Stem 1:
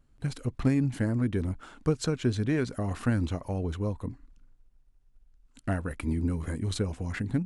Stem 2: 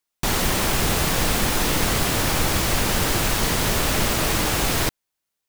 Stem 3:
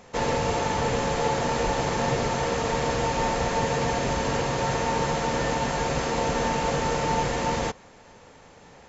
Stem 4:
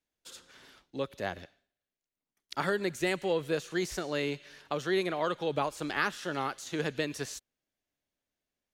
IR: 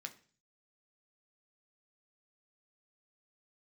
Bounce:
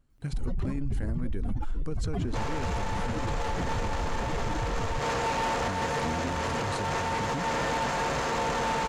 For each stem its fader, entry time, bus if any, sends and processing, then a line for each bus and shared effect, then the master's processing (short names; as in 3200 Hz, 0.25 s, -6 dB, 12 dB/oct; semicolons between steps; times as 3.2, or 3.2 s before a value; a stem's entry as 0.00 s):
-3.0 dB, 0.00 s, no send, dry
-2.0 dB, 0.10 s, no send, spectral contrast raised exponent 3.7
+0.5 dB, 2.20 s, no send, bell 1200 Hz +6.5 dB 1.5 oct; tube stage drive 25 dB, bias 0.6
off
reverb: off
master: limiter -22.5 dBFS, peak gain reduction 11 dB